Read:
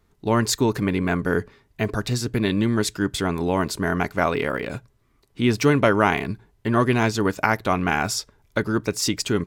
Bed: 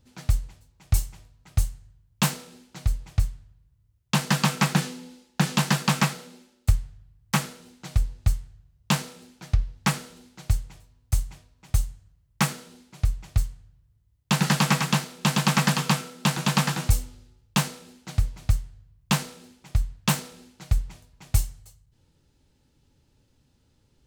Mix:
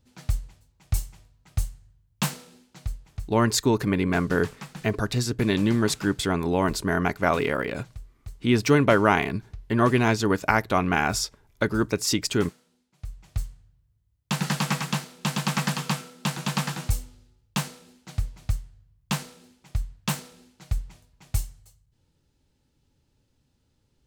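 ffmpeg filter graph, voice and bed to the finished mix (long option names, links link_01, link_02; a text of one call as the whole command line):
ffmpeg -i stem1.wav -i stem2.wav -filter_complex "[0:a]adelay=3050,volume=-1dB[link_01];[1:a]volume=10.5dB,afade=type=out:start_time=2.48:duration=0.93:silence=0.177828,afade=type=in:start_time=12.97:duration=0.52:silence=0.199526[link_02];[link_01][link_02]amix=inputs=2:normalize=0" out.wav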